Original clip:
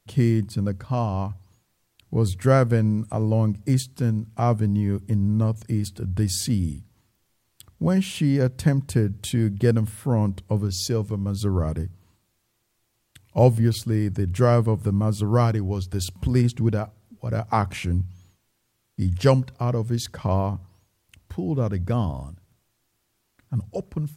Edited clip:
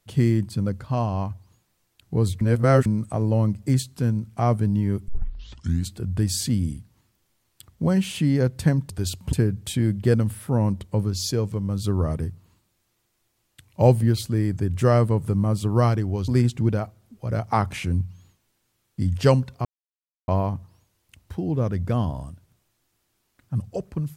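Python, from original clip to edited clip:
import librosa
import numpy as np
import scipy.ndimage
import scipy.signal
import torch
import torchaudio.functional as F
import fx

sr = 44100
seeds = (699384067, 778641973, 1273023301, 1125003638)

y = fx.edit(x, sr, fx.reverse_span(start_s=2.41, length_s=0.45),
    fx.tape_start(start_s=5.08, length_s=0.84),
    fx.move(start_s=15.85, length_s=0.43, to_s=8.9),
    fx.silence(start_s=19.65, length_s=0.63), tone=tone)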